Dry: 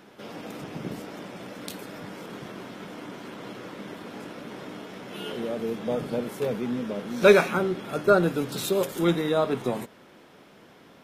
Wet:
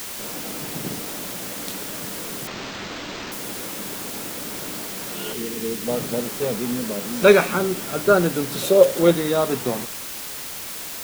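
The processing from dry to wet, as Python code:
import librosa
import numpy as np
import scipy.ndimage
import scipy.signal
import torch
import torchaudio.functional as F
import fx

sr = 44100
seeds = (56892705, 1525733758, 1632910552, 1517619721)

y = fx.cheby1_bandstop(x, sr, low_hz=460.0, high_hz=1800.0, order=5, at=(5.33, 5.87))
y = fx.peak_eq(y, sr, hz=550.0, db=14.5, octaves=0.45, at=(8.62, 9.11))
y = fx.quant_dither(y, sr, seeds[0], bits=6, dither='triangular')
y = fx.resample_linear(y, sr, factor=4, at=(2.47, 3.32))
y = y * 10.0 ** (3.0 / 20.0)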